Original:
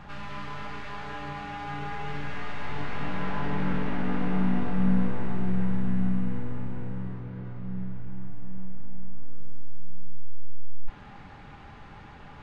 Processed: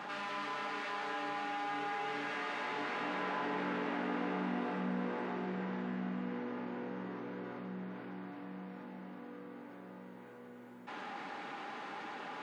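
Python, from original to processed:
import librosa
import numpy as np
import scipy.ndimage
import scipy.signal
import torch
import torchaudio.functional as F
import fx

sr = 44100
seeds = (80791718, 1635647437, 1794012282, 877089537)

y = scipy.signal.sosfilt(scipy.signal.butter(4, 260.0, 'highpass', fs=sr, output='sos'), x)
y = fx.env_flatten(y, sr, amount_pct=50)
y = F.gain(torch.from_numpy(y), -4.0).numpy()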